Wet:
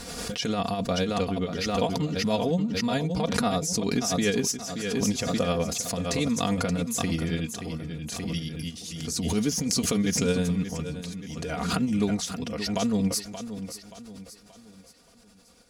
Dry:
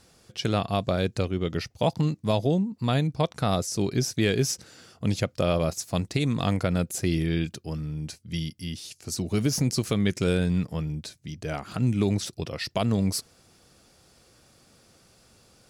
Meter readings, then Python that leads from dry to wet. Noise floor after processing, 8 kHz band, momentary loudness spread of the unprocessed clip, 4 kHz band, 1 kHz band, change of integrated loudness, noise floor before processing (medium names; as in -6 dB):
-55 dBFS, +4.5 dB, 10 LU, +2.0 dB, +1.0 dB, -0.5 dB, -60 dBFS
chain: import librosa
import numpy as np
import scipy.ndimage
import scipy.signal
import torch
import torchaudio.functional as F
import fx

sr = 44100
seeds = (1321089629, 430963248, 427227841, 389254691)

p1 = fx.dynamic_eq(x, sr, hz=6600.0, q=3.5, threshold_db=-52.0, ratio=4.0, max_db=5)
p2 = p1 + 0.73 * np.pad(p1, (int(4.2 * sr / 1000.0), 0))[:len(p1)]
p3 = 10.0 ** (-19.5 / 20.0) * np.tanh(p2 / 10.0 ** (-19.5 / 20.0))
p4 = p2 + (p3 * librosa.db_to_amplitude(-12.0))
p5 = p4 * (1.0 - 0.81 / 2.0 + 0.81 / 2.0 * np.cos(2.0 * np.pi * 9.8 * (np.arange(len(p4)) / sr)))
p6 = p5 + fx.echo_feedback(p5, sr, ms=578, feedback_pct=41, wet_db=-11.0, dry=0)
p7 = fx.pre_swell(p6, sr, db_per_s=30.0)
y = p7 * librosa.db_to_amplitude(-2.5)